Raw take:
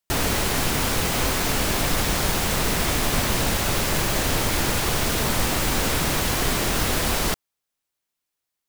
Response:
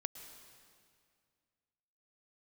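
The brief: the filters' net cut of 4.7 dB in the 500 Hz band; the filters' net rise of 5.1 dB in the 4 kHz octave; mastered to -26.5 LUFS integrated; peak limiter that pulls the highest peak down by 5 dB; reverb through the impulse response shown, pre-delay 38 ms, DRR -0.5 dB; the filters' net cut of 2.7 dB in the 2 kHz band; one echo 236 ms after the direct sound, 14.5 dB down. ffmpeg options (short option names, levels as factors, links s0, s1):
-filter_complex "[0:a]equalizer=f=500:t=o:g=-6,equalizer=f=2000:t=o:g=-5.5,equalizer=f=4000:t=o:g=8,alimiter=limit=0.224:level=0:latency=1,aecho=1:1:236:0.188,asplit=2[s0][s1];[1:a]atrim=start_sample=2205,adelay=38[s2];[s1][s2]afir=irnorm=-1:irlink=0,volume=1.26[s3];[s0][s3]amix=inputs=2:normalize=0,volume=0.422"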